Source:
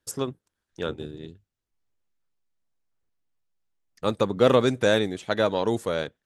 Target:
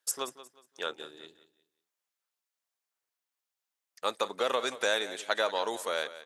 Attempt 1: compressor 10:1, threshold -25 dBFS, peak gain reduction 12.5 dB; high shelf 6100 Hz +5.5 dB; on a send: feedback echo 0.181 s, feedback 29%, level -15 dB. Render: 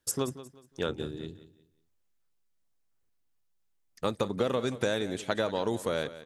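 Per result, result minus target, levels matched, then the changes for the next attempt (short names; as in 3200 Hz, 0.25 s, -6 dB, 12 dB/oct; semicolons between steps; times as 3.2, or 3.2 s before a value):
compressor: peak gain reduction +6 dB; 1000 Hz band -3.0 dB
change: compressor 10:1, threshold -18.5 dBFS, peak gain reduction 7 dB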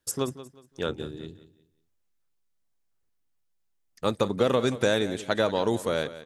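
1000 Hz band -3.5 dB
add after compressor: HPF 710 Hz 12 dB/oct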